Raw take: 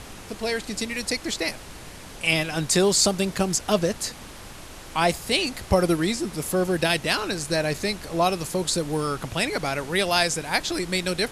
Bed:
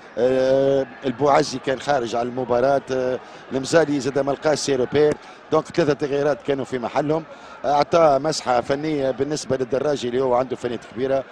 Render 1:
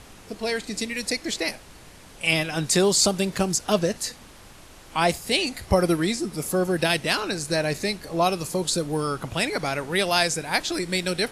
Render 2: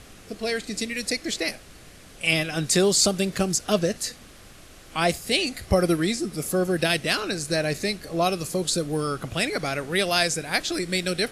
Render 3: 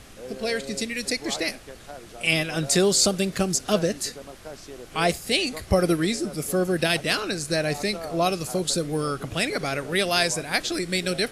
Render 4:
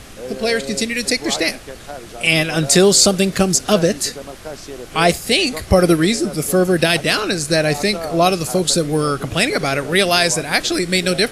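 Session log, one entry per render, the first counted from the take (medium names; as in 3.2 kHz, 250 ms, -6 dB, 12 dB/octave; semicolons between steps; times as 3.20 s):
noise print and reduce 6 dB
peaking EQ 920 Hz -10 dB 0.29 oct
add bed -21 dB
trim +8.5 dB; peak limiter -1 dBFS, peak gain reduction 3 dB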